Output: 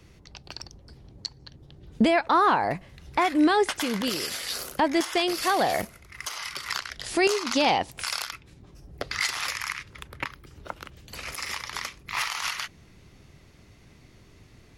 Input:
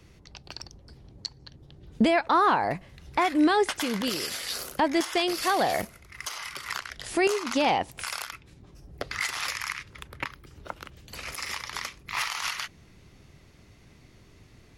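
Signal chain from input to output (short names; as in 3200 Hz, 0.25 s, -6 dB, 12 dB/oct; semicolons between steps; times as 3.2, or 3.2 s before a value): 6.36–9.33 dynamic EQ 4600 Hz, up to +6 dB, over -45 dBFS, Q 1.3; gain +1 dB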